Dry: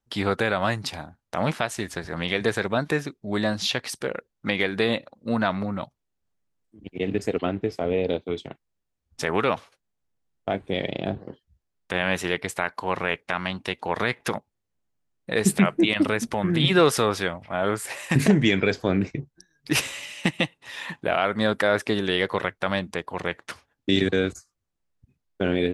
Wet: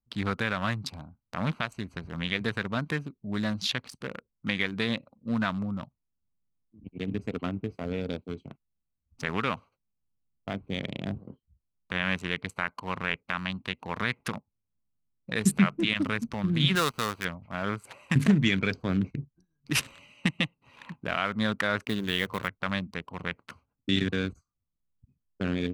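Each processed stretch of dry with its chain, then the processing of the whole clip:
16.75–17.25 switching dead time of 0.09 ms + low shelf 440 Hz -6 dB
21.85–22.48 block floating point 5-bit + de-hum 50.54 Hz, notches 3
whole clip: Wiener smoothing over 25 samples; band shelf 520 Hz -8.5 dB; gain -2 dB

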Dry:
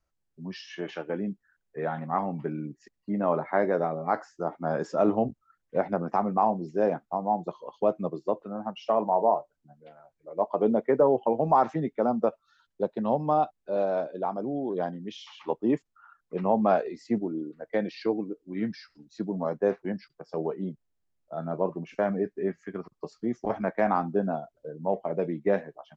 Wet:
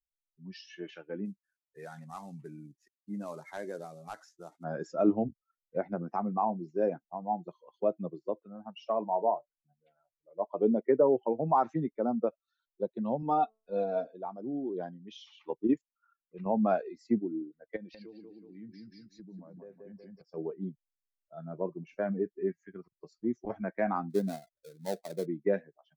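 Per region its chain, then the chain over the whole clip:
1.25–4.64 CVSD 64 kbps + dynamic EQ 4900 Hz, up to +6 dB, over -50 dBFS, Q 0.73 + compressor 1.5:1, threshold -35 dBFS
13.22–14.15 comb 4.3 ms, depth 85% + de-hum 220 Hz, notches 9
15.67–16.46 bell 5000 Hz +3.5 dB 2.3 oct + notch 750 Hz, Q 17 + level quantiser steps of 11 dB
17.76–20.22 low shelf 390 Hz +6 dB + feedback echo 0.184 s, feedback 36%, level -5 dB + compressor 4:1, threshold -35 dBFS
24.1–25.26 switching dead time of 0.19 ms + bell 2800 Hz -8.5 dB 0.56 oct + mismatched tape noise reduction encoder only
whole clip: per-bin expansion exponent 1.5; dynamic EQ 300 Hz, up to +6 dB, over -43 dBFS, Q 1.2; gain -3.5 dB

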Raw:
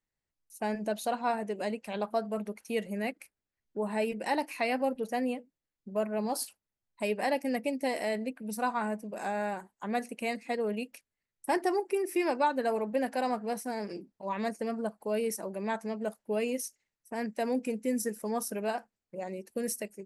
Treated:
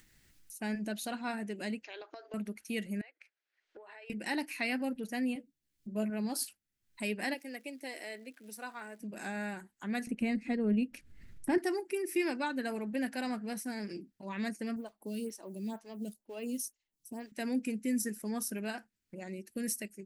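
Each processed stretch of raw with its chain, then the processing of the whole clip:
1.84–2.34 brick-wall FIR band-pass 290–7000 Hz + compressor, threshold -35 dBFS
3.01–4.1 inverse Chebyshev high-pass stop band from 240 Hz + compressor 5:1, threshold -48 dBFS + air absorption 190 m
5.34–6.1 bell 1600 Hz -5.5 dB 1.5 oct + doubler 14 ms -4 dB
7.33–9 crackle 410/s -51 dBFS + ladder high-pass 300 Hz, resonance 25%
10.07–11.58 tilt -3.5 dB/oct + upward compressor, threshold -34 dBFS
14.76–17.32 band shelf 1800 Hz -11 dB 1 oct + modulation noise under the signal 31 dB + photocell phaser 2.1 Hz
whole clip: band shelf 710 Hz -10.5 dB; upward compressor, threshold -44 dBFS

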